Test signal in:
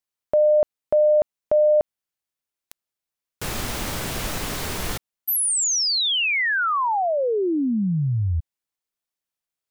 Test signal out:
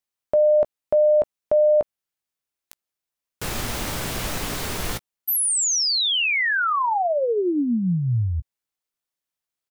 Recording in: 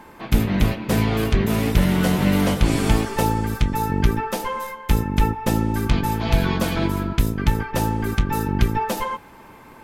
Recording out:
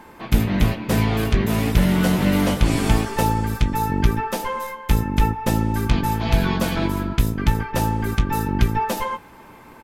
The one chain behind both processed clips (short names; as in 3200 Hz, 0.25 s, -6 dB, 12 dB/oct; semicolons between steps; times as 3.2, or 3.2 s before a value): doubler 17 ms -13 dB